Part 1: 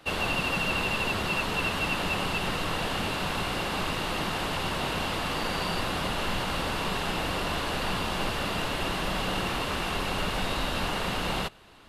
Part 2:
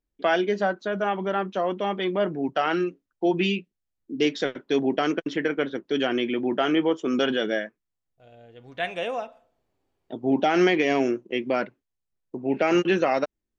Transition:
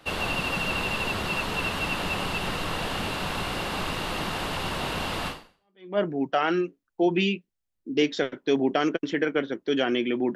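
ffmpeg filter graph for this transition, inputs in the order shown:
ffmpeg -i cue0.wav -i cue1.wav -filter_complex "[0:a]apad=whole_dur=10.35,atrim=end=10.35,atrim=end=5.98,asetpts=PTS-STARTPTS[link_01];[1:a]atrim=start=1.51:end=6.58,asetpts=PTS-STARTPTS[link_02];[link_01][link_02]acrossfade=duration=0.7:curve1=exp:curve2=exp" out.wav

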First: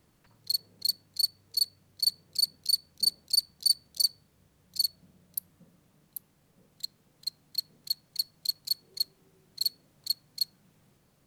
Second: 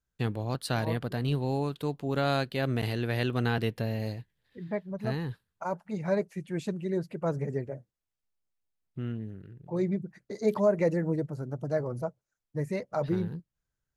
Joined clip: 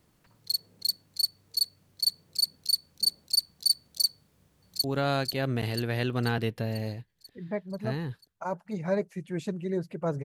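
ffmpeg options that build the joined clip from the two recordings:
ffmpeg -i cue0.wav -i cue1.wav -filter_complex "[0:a]apad=whole_dur=10.24,atrim=end=10.24,atrim=end=4.842[link_01];[1:a]atrim=start=2.038:end=7.44[link_02];[link_01][link_02]acrossfade=duration=0.004:curve1=hsin:curve2=hsin,asplit=2[link_03][link_04];[link_04]afade=type=in:start_time=4.13:duration=0.01,afade=type=out:start_time=4.84:duration=0.01,aecho=0:1:490|980|1470|1960|2450|2940|3430|3920:0.530884|0.318531|0.191118|0.114671|0.0688026|0.0412816|0.0247689|0.0148614[link_05];[link_03][link_05]amix=inputs=2:normalize=0" out.wav

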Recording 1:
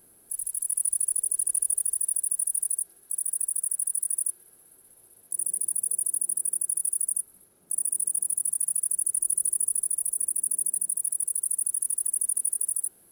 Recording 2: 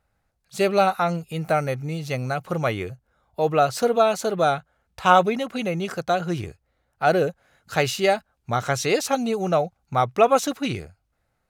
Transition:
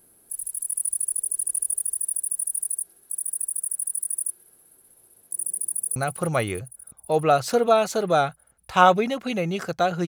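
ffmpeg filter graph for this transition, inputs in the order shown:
ffmpeg -i cue0.wav -i cue1.wav -filter_complex "[0:a]apad=whole_dur=10.07,atrim=end=10.07,atrim=end=5.962[link_01];[1:a]atrim=start=2.248:end=6.36[link_02];[link_01][link_02]acrossfade=duration=0.004:curve1=hsin:curve2=hsin,asplit=2[link_03][link_04];[link_04]afade=type=in:start_time=5.69:duration=0.01,afade=type=out:start_time=5.96:duration=0.01,aecho=0:1:320|640|960|1280|1600|1920|2240|2560|2880|3200:0.281838|0.197287|0.138101|0.0966705|0.0676694|0.0473686|0.033158|0.0232106|0.0162474|0.0113732[link_05];[link_03][link_05]amix=inputs=2:normalize=0" out.wav

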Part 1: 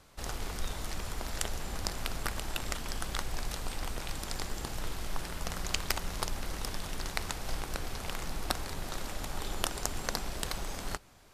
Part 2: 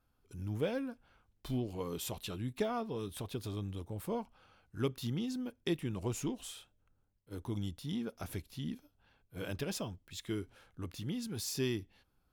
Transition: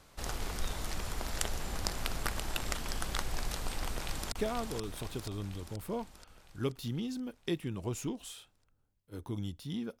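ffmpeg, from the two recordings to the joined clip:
ffmpeg -i cue0.wav -i cue1.wav -filter_complex "[0:a]apad=whole_dur=10,atrim=end=10,atrim=end=4.322[link_01];[1:a]atrim=start=2.508:end=8.19[link_02];[link_01][link_02]acrossfade=duration=0.004:curve1=hsin:curve2=hsin,asplit=2[link_03][link_04];[link_04]afade=type=in:start_time=3.87:duration=0.01,afade=type=out:start_time=4.32:duration=0.01,aecho=0:1:480|960|1440|1920|2400|2880|3360|3840|4320:0.630957|0.378574|0.227145|0.136287|0.0817721|0.0490632|0.0294379|0.0176628|0.0105977[link_05];[link_03][link_05]amix=inputs=2:normalize=0" out.wav

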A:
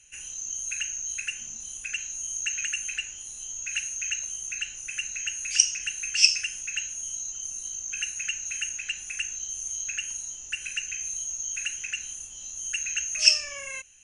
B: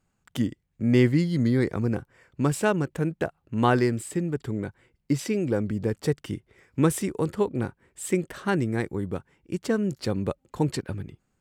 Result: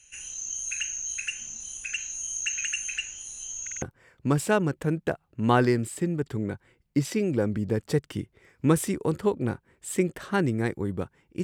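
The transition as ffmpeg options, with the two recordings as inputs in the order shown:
ffmpeg -i cue0.wav -i cue1.wav -filter_complex "[0:a]apad=whole_dur=11.43,atrim=end=11.43,asplit=4[link_01][link_02][link_03][link_04];[link_01]atrim=end=3.672[link_05];[link_02]atrim=start=3.618:end=3.672[link_06];[link_03]atrim=start=3.618:end=3.672[link_07];[link_04]atrim=start=3.618:end=3.672[link_08];[1:a]atrim=start=1.958:end=9.57[link_09];[link_05][link_06]acrossfade=duration=0.004:curve1=hsin:curve2=hsin[link_10];[link_10][link_07]acrossfade=duration=0.004:curve1=hsin:curve2=hsin[link_11];[link_11][link_08]acrossfade=duration=0.004:curve1=hsin:curve2=hsin[link_12];[link_12][link_09]acrossfade=duration=0.004:curve1=hsin:curve2=hsin" out.wav

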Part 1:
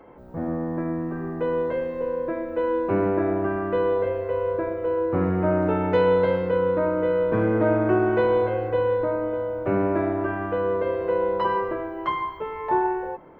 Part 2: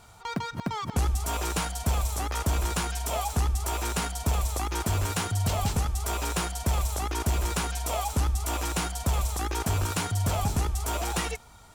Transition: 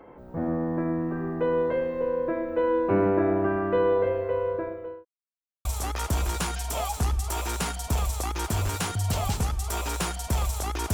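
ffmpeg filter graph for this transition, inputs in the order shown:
ffmpeg -i cue0.wav -i cue1.wav -filter_complex "[0:a]apad=whole_dur=10.93,atrim=end=10.93,asplit=2[link_01][link_02];[link_01]atrim=end=5.05,asetpts=PTS-STARTPTS,afade=type=out:start_time=3.99:duration=1.06:curve=qsin[link_03];[link_02]atrim=start=5.05:end=5.65,asetpts=PTS-STARTPTS,volume=0[link_04];[1:a]atrim=start=2.01:end=7.29,asetpts=PTS-STARTPTS,afade=type=in:duration=0.004:curve=hsin[link_05];[link_03][link_04][link_05]concat=n=3:v=0:a=1" out.wav

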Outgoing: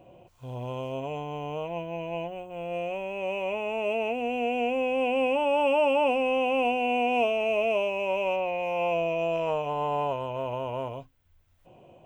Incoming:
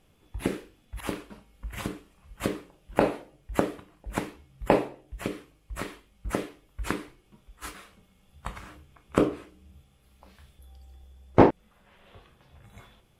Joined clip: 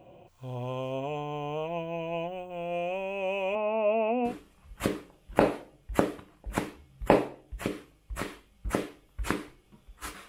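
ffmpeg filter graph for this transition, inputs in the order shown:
ffmpeg -i cue0.wav -i cue1.wav -filter_complex "[0:a]asettb=1/sr,asplit=3[link_01][link_02][link_03];[link_01]atrim=end=3.554[link_04];[link_02]atrim=start=3.55:end=4.34,asetpts=PTS-STARTPTS,afade=type=in:duration=0.004:curve=qsin,afade=type=out:start_time=0.786:duration=0.004:curve=qsin,highpass=frequency=100:width=0.5412,highpass=frequency=100:width=1.3066,equalizer=frequency=170:width_type=q:width=4:gain=-9,equalizer=frequency=240:width_type=q:width=4:gain=7,equalizer=frequency=400:width_type=q:width=4:gain=-5,equalizer=frequency=570:width_type=q:width=4:gain=7,equalizer=frequency=1100:width_type=q:width=4:gain=7,equalizer=frequency=1700:width_type=q:width=4:gain=-8,lowpass=frequency=2400:width=0.5412,lowpass=frequency=2400:width=1.3066[link_05];[link_03]atrim=start=4.336[link_06];[link_04][link_05]acrossfade=duration=0.004:curve1=hsin:curve2=qsin[link_07];[link_07][link_06]acrossfade=duration=0.004:curve1=qsin:curve2=hsin,apad=whole_dur=10.28,atrim=end=10.28,atrim=end=4.34,asetpts=PTS-STARTPTS[link_08];[1:a]atrim=start=1.84:end=7.88,asetpts=PTS-STARTPTS[link_09];[link_08][link_09]acrossfade=duration=0.1:curve1=tri:curve2=tri" out.wav

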